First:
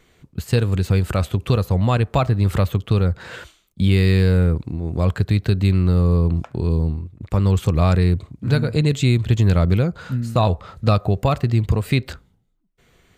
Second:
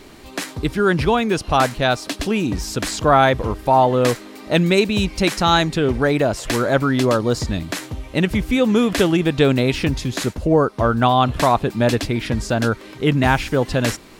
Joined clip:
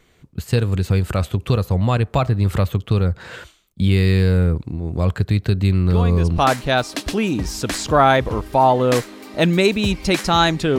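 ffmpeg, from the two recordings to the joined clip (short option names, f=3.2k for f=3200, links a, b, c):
-filter_complex "[1:a]asplit=2[a][b];[0:a]apad=whole_dur=10.78,atrim=end=10.78,atrim=end=6.382[c];[b]atrim=start=1.508:end=5.91[d];[a]atrim=start=1.03:end=1.51,asetpts=PTS-STARTPTS,volume=-10dB,afade=t=in:d=0.004:c=hsin,afade=t=out:st=0.476:d=0.004:c=hsin,adelay=5900[e];[c][d]acrossfade=d=0.004:c1=hsin:c2=hsin[f];[f][e]amix=inputs=2:normalize=0"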